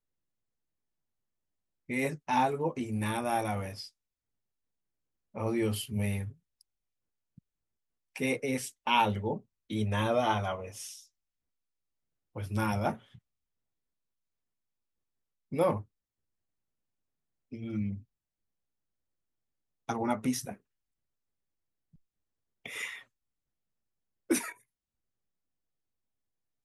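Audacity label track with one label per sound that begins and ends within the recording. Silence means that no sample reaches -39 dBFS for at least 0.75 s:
1.900000	3.860000	sound
5.350000	6.300000	sound
8.160000	10.960000	sound
12.360000	12.950000	sound
15.520000	15.810000	sound
17.530000	17.980000	sound
19.890000	20.540000	sound
22.660000	22.980000	sound
24.300000	24.520000	sound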